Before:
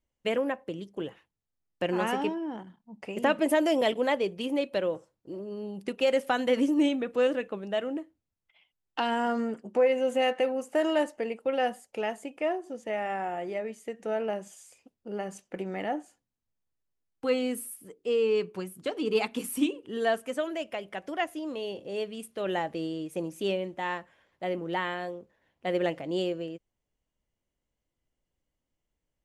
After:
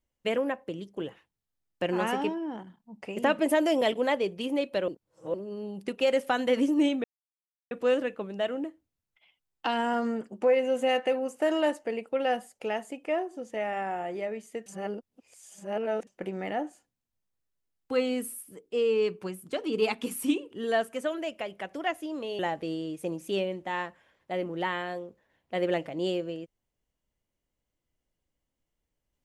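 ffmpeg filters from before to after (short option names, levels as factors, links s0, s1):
-filter_complex "[0:a]asplit=7[s0][s1][s2][s3][s4][s5][s6];[s0]atrim=end=4.882[s7];[s1]atrim=start=4.878:end=5.342,asetpts=PTS-STARTPTS,areverse[s8];[s2]atrim=start=5.338:end=7.04,asetpts=PTS-STARTPTS,afade=t=out:st=1.698:d=0.004:c=hsin,apad=pad_dur=0.67[s9];[s3]atrim=start=7.04:end=13.992,asetpts=PTS-STARTPTS,afade=t=in:d=0.004:c=hsin[s10];[s4]atrim=start=13.988:end=15.402,asetpts=PTS-STARTPTS,areverse[s11];[s5]atrim=start=15.398:end=21.722[s12];[s6]atrim=start=22.508[s13];[s7][s8]acrossfade=d=0.004:c1=hsin:c2=hsin[s14];[s9][s10]concat=n=2:v=0:a=1[s15];[s14][s15]acrossfade=d=0.004:c1=hsin:c2=hsin[s16];[s16][s11]acrossfade=d=0.004:c1=hsin:c2=hsin[s17];[s17][s12]acrossfade=d=0.004:c1=hsin:c2=hsin[s18];[s18][s13]acrossfade=d=0.004:c1=hsin:c2=hsin"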